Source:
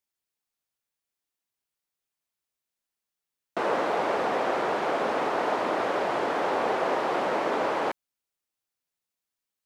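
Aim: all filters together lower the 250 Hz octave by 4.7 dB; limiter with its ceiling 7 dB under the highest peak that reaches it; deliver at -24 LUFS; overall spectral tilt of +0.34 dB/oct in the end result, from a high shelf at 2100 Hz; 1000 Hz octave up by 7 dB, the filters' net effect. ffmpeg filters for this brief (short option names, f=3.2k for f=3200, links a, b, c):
-af "equalizer=f=250:t=o:g=-8,equalizer=f=1k:t=o:g=7.5,highshelf=f=2.1k:g=8.5,volume=1dB,alimiter=limit=-15.5dB:level=0:latency=1"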